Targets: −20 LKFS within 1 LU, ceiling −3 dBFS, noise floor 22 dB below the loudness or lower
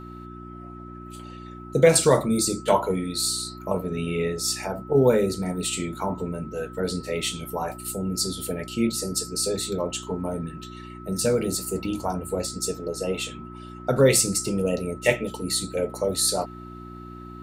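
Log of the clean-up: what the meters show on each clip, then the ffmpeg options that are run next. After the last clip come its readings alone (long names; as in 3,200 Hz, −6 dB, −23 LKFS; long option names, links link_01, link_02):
mains hum 60 Hz; hum harmonics up to 360 Hz; level of the hum −38 dBFS; interfering tone 1,300 Hz; level of the tone −43 dBFS; integrated loudness −25.0 LKFS; sample peak −5.0 dBFS; target loudness −20.0 LKFS
→ -af "bandreject=frequency=60:width_type=h:width=4,bandreject=frequency=120:width_type=h:width=4,bandreject=frequency=180:width_type=h:width=4,bandreject=frequency=240:width_type=h:width=4,bandreject=frequency=300:width_type=h:width=4,bandreject=frequency=360:width_type=h:width=4"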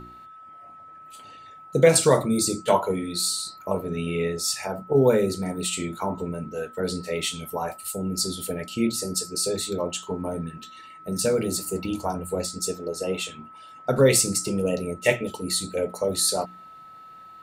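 mains hum none found; interfering tone 1,300 Hz; level of the tone −43 dBFS
→ -af "bandreject=frequency=1300:width=30"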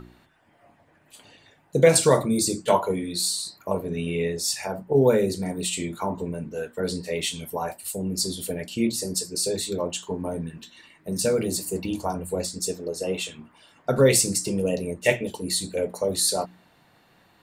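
interfering tone none found; integrated loudness −25.0 LKFS; sample peak −5.0 dBFS; target loudness −20.0 LKFS
→ -af "volume=5dB,alimiter=limit=-3dB:level=0:latency=1"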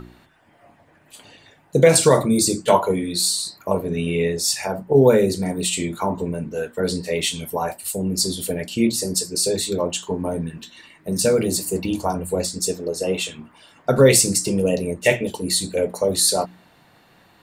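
integrated loudness −20.5 LKFS; sample peak −3.0 dBFS; background noise floor −55 dBFS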